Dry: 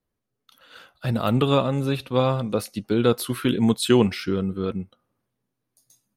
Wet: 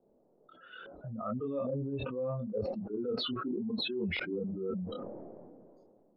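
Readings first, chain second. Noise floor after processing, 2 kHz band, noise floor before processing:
-68 dBFS, -8.0 dB, -81 dBFS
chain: spectral contrast raised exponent 2.5; LFO low-pass saw up 1.2 Hz 460–3400 Hz; band noise 110–600 Hz -63 dBFS; chorus voices 6, 0.42 Hz, delay 26 ms, depth 2.8 ms; bell 110 Hz -10.5 dB 1.5 oct; reverse; compressor 12:1, threshold -32 dBFS, peak gain reduction 15 dB; reverse; air absorption 200 m; sustainer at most 24 dB/s

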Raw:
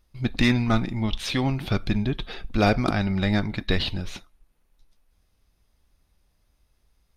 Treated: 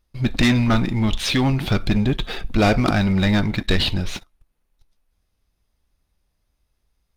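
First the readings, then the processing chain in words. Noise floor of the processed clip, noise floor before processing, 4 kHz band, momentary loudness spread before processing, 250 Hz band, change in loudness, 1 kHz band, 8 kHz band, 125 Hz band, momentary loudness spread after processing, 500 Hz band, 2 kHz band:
-72 dBFS, -68 dBFS, +6.0 dB, 10 LU, +5.0 dB, +5.0 dB, +3.5 dB, +8.0 dB, +5.0 dB, 8 LU, +4.0 dB, +4.5 dB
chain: sample leveller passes 2

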